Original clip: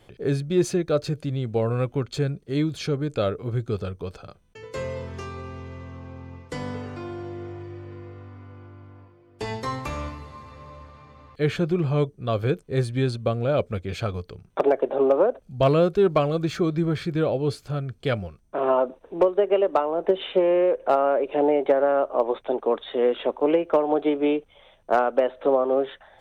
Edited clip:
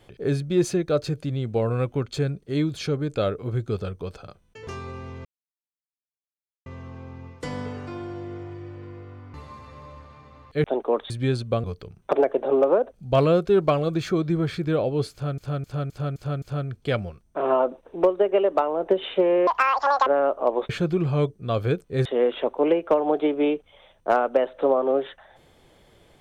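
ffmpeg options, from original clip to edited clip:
-filter_complex "[0:a]asplit=16[a][b][c][d][e][f][g][h][i][j][k][l][m][n][o][p];[a]atrim=end=4.672[q];[b]atrim=start=5.168:end=5.75,asetpts=PTS-STARTPTS,afade=t=out:st=0.578:d=0.004:c=hsin,apad=pad_dur=1.41[r];[c]atrim=start=5.75:end=8.432,asetpts=PTS-STARTPTS,afade=t=in:d=0.004:c=hsin[s];[d]atrim=start=10.178:end=11.482[t];[e]atrim=start=22.418:end=22.882[u];[f]atrim=start=12.838:end=13.382[v];[g]atrim=start=14.118:end=17.862[w];[h]atrim=start=17.598:end=17.862[x];[i]atrim=start=17.598:end=17.862[y];[j]atrim=start=17.598:end=17.862[z];[k]atrim=start=17.598:end=17.862[aa];[l]atrim=start=17.598:end=20.654[ab];[m]atrim=start=20.65:end=21.79,asetpts=PTS-STARTPTS,asetrate=84672,aresample=44100,atrim=end_sample=26184,asetpts=PTS-STARTPTS[ac];[n]atrim=start=21.786:end=22.422[ad];[o]atrim=start=11.478:end=12.842[ae];[p]atrim=start=22.878[af];[r][s]concat=n=2:v=0:a=1[ag];[q][ag]acrossfade=d=0.004:c1=hsin:c2=hsin[ah];[ah][t]acrossfade=d=0.004:c1=hsin:c2=hsin[ai];[ai][u]acrossfade=d=0.004:c1=hsin:c2=hsin[aj];[aj][v]acrossfade=d=0.004:c1=hsin:c2=hsin[ak];[ak][w]acrossfade=d=0.004:c1=hsin:c2=hsin[al];[al][x]acrossfade=d=0.004:c1=hsin:c2=hsin[am];[am][y]acrossfade=d=0.004:c1=hsin:c2=hsin[an];[an][z]acrossfade=d=0.004:c1=hsin:c2=hsin[ao];[ao][aa]acrossfade=d=0.004:c1=hsin:c2=hsin[ap];[ap][ab]acrossfade=d=0.004:c1=hsin:c2=hsin[aq];[aq][ac]acrossfade=d=0.004:c1=hsin:c2=hsin[ar];[ar][ad]acrossfade=d=0.004:c1=hsin:c2=hsin[as];[as][ae]acrossfade=d=0.004:c1=hsin:c2=hsin[at];[at][af]acrossfade=d=0.004:c1=hsin:c2=hsin"

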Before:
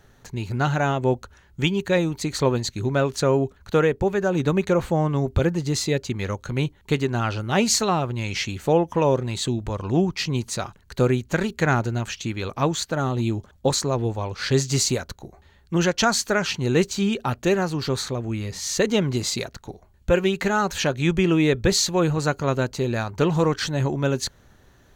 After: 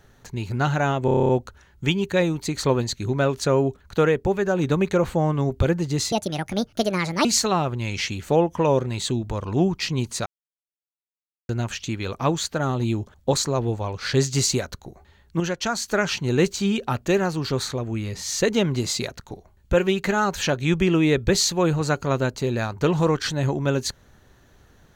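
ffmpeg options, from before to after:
-filter_complex "[0:a]asplit=15[a][b][c][d][e][f][g][h][i][j][k][l][m][n][o];[a]atrim=end=1.082[p];[b]atrim=start=1.048:end=1.082[q];[c]atrim=start=1.048:end=1.082[r];[d]atrim=start=1.048:end=1.082[s];[e]atrim=start=1.048:end=1.082[t];[f]atrim=start=1.048:end=1.082[u];[g]atrim=start=1.048:end=1.082[v];[h]atrim=start=1.048:end=1.082[w];[i]atrim=start=1.048:end=5.884[x];[j]atrim=start=5.88:end=7.62,asetpts=PTS-STARTPTS,asetrate=67914,aresample=44100,atrim=end_sample=49827,asetpts=PTS-STARTPTS[y];[k]atrim=start=7.616:end=10.63,asetpts=PTS-STARTPTS,afade=t=out:st=3.01:d=0.004:c=hsin[z];[l]atrim=start=10.63:end=11.86,asetpts=PTS-STARTPTS,volume=0[aa];[m]atrim=start=11.86:end=15.772,asetpts=PTS-STARTPTS,afade=t=in:d=0.004:c=hsin[ab];[n]atrim=start=15.768:end=16.252,asetpts=PTS-STARTPTS,volume=-5.5dB[ac];[o]atrim=start=16.248[ad];[p][q]acrossfade=d=0.004:c1=hsin:c2=hsin[ae];[ae][r]acrossfade=d=0.004:c1=hsin:c2=hsin[af];[af][s]acrossfade=d=0.004:c1=hsin:c2=hsin[ag];[ag][t]acrossfade=d=0.004:c1=hsin:c2=hsin[ah];[ah][u]acrossfade=d=0.004:c1=hsin:c2=hsin[ai];[ai][v]acrossfade=d=0.004:c1=hsin:c2=hsin[aj];[aj][w]acrossfade=d=0.004:c1=hsin:c2=hsin[ak];[ak][x]acrossfade=d=0.004:c1=hsin:c2=hsin[al];[al][y]acrossfade=d=0.004:c1=hsin:c2=hsin[am];[z][aa][ab]concat=n=3:v=0:a=1[an];[am][an]acrossfade=d=0.004:c1=hsin:c2=hsin[ao];[ao][ac]acrossfade=d=0.004:c1=hsin:c2=hsin[ap];[ap][ad]acrossfade=d=0.004:c1=hsin:c2=hsin"

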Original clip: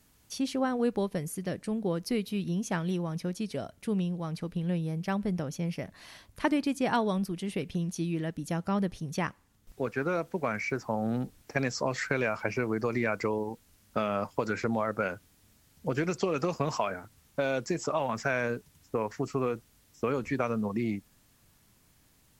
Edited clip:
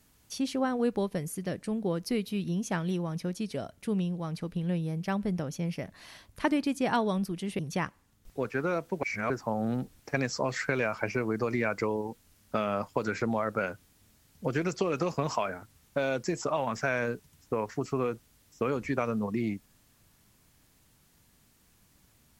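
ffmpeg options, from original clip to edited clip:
-filter_complex "[0:a]asplit=4[a][b][c][d];[a]atrim=end=7.592[e];[b]atrim=start=9.008:end=10.452[f];[c]atrim=start=10.448:end=10.722,asetpts=PTS-STARTPTS,areverse[g];[d]atrim=start=10.718[h];[e][f]acrossfade=d=0.004:c1=hsin:c2=hsin[i];[i][g]acrossfade=d=0.004:c1=hsin:c2=hsin[j];[j][h]acrossfade=d=0.004:c1=hsin:c2=hsin"

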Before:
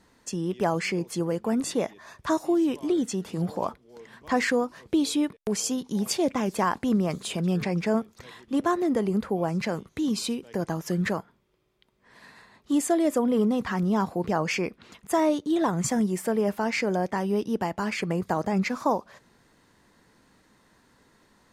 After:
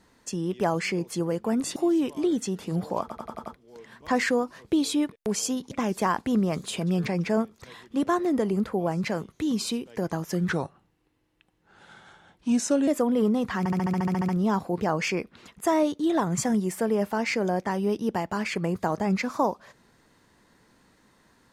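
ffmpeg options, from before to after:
-filter_complex "[0:a]asplit=20[a][b][c][d][e][f][g][h][i][j][k][l][m][n][o][p][q][r][s][t];[a]atrim=end=1.762[u];[b]atrim=start=2.418:end=3.762[v];[c]atrim=start=3.668:end=3.762[w];[d]atrim=start=3.668:end=3.762[x];[e]atrim=start=3.668:end=3.762[y];[f]atrim=start=3.668:end=3.762[z];[g]atrim=start=3.668:end=5.922[aa];[h]atrim=start=6.278:end=11.064[ab];[i]atrim=start=11.06:end=13.04,asetpts=PTS-STARTPTS,asetrate=36603,aresample=44100,atrim=end_sample=105202,asetpts=PTS-STARTPTS[ac];[j]atrim=start=13.036:end=13.822[ad];[k]atrim=start=13.748:end=13.822[ae];[l]atrim=start=13.748:end=13.822[af];[m]atrim=start=13.748:end=13.822[ag];[n]atrim=start=13.748:end=13.822[ah];[o]atrim=start=13.748:end=13.822[ai];[p]atrim=start=13.748:end=13.822[aj];[q]atrim=start=13.748:end=13.822[ak];[r]atrim=start=13.748:end=13.822[al];[s]atrim=start=13.748:end=13.822[am];[t]atrim=start=13.748[an];[u][v]acrossfade=d=0.004:c1=hsin:c2=hsin[ao];[ao][w]acrossfade=d=0.004:c1=hsin:c2=hsin[ap];[ap][x]acrossfade=d=0.004:c1=hsin:c2=hsin[aq];[aq][y]acrossfade=d=0.004:c1=hsin:c2=hsin[ar];[ar][z]acrossfade=d=0.004:c1=hsin:c2=hsin[as];[as][aa]acrossfade=d=0.004:c1=hsin:c2=hsin[at];[at][ab]acrossfade=d=0.004:c1=hsin:c2=hsin[au];[au][ac]acrossfade=d=0.004:c1=hsin:c2=hsin[av];[av][ad]acrossfade=d=0.004:c1=hsin:c2=hsin[aw];[aw][ae]acrossfade=d=0.004:c1=hsin:c2=hsin[ax];[ax][af]acrossfade=d=0.004:c1=hsin:c2=hsin[ay];[ay][ag]acrossfade=d=0.004:c1=hsin:c2=hsin[az];[az][ah]acrossfade=d=0.004:c1=hsin:c2=hsin[ba];[ba][ai]acrossfade=d=0.004:c1=hsin:c2=hsin[bb];[bb][aj]acrossfade=d=0.004:c1=hsin:c2=hsin[bc];[bc][ak]acrossfade=d=0.004:c1=hsin:c2=hsin[bd];[bd][al]acrossfade=d=0.004:c1=hsin:c2=hsin[be];[be][am]acrossfade=d=0.004:c1=hsin:c2=hsin[bf];[bf][an]acrossfade=d=0.004:c1=hsin:c2=hsin"

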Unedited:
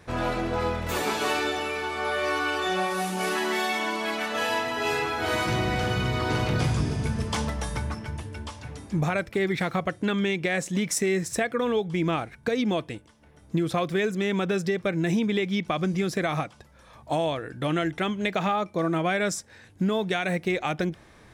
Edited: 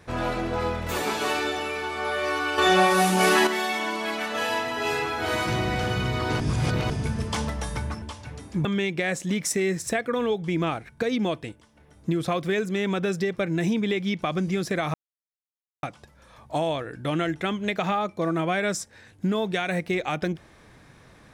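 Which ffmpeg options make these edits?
-filter_complex "[0:a]asplit=8[a][b][c][d][e][f][g][h];[a]atrim=end=2.582[i];[b]atrim=start=2.578:end=3.472,asetpts=PTS-STARTPTS,volume=8dB[j];[c]atrim=start=3.468:end=6.402[k];[d]atrim=start=6.398:end=6.902,asetpts=PTS-STARTPTS,areverse[l];[e]atrim=start=6.898:end=8.022[m];[f]atrim=start=8.398:end=9.032[n];[g]atrim=start=10.108:end=16.4,asetpts=PTS-STARTPTS,afade=t=out:st=6.288:d=0.004:c=hsin,apad=pad_dur=0.89[o];[h]atrim=start=16.4,asetpts=PTS-STARTPTS,afade=t=in:d=0.004:c=hsin[p];[i][j]acrossfade=d=0.004:c1=hsin:c2=hsin[q];[q][k]acrossfade=d=0.004:c1=hsin:c2=hsin[r];[r][l]acrossfade=d=0.004:c1=hsin:c2=hsin[s];[s][m]acrossfade=d=0.004:c1=hsin:c2=hsin[t];[t][n]acrossfade=d=0.004:c1=hsin:c2=hsin[u];[o][p]concat=n=2:v=0:a=1[v];[u][v]acrossfade=d=0.004:c1=hsin:c2=hsin"

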